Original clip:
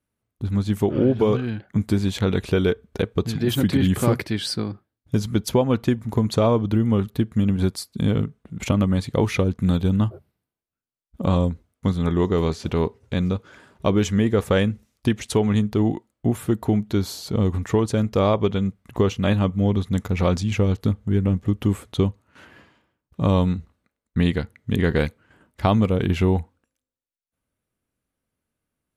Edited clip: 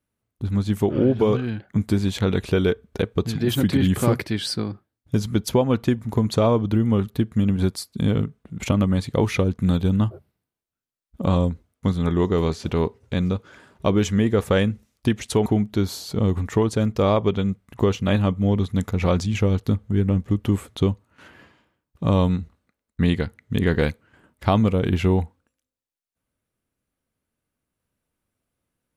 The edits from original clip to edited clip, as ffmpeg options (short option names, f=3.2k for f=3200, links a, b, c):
-filter_complex "[0:a]asplit=2[a][b];[a]atrim=end=15.462[c];[b]atrim=start=16.628[d];[c][d]acrossfade=d=0.004:c1=hsin:c2=hsin"